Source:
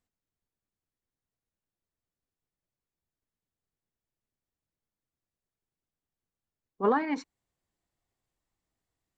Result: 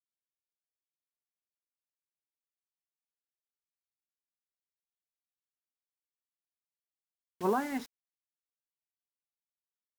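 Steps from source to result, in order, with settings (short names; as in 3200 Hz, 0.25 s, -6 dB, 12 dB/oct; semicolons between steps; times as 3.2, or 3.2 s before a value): bit-crush 7-bit; speed mistake 48 kHz file played as 44.1 kHz; gain -4.5 dB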